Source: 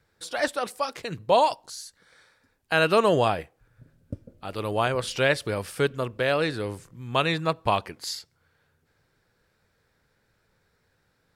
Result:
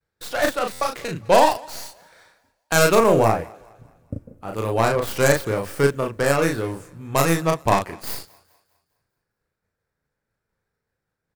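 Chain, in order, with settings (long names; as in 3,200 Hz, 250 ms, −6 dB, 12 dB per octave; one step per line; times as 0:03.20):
stylus tracing distortion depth 0.28 ms
downward expander −58 dBFS
parametric band 3,700 Hz −2 dB 1.2 octaves, from 0:02.95 −14 dB, from 0:04.58 −6.5 dB
double-tracking delay 36 ms −3.5 dB
feedback echo with a high-pass in the loop 206 ms, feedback 43%, high-pass 230 Hz, level −24 dB
buffer that repeats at 0:00.72, samples 512, times 7
level +3.5 dB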